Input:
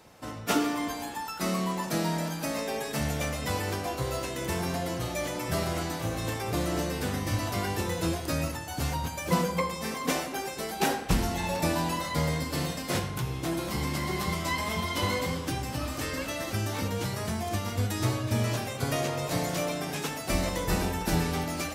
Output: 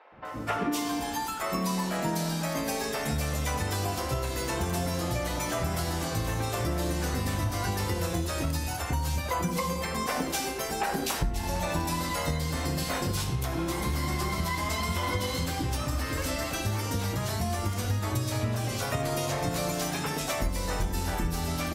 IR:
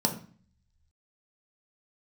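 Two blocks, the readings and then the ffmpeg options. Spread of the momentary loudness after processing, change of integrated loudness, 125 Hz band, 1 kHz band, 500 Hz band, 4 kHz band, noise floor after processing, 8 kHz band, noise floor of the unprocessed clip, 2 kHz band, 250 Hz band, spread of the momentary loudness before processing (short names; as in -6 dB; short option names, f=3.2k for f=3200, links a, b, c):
2 LU, 0.0 dB, +1.0 dB, +0.5 dB, -1.0 dB, 0.0 dB, -34 dBFS, +1.5 dB, -37 dBFS, -0.5 dB, -1.0 dB, 4 LU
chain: -filter_complex "[0:a]acrossover=split=480|2600[a][b][c];[a]adelay=120[d];[c]adelay=250[e];[d][b][e]amix=inputs=3:normalize=0,asubboost=boost=2.5:cutoff=80,acompressor=threshold=-30dB:ratio=6,asplit=2[f][g];[g]aecho=0:1:80:0.112[h];[f][h]amix=inputs=2:normalize=0,volume=4.5dB"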